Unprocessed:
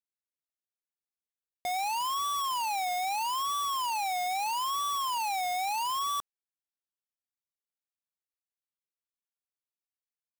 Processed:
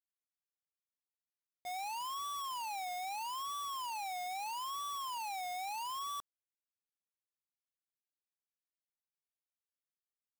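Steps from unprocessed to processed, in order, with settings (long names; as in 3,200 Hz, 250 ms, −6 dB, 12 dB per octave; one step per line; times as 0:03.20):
downward expander −17 dBFS
level +18 dB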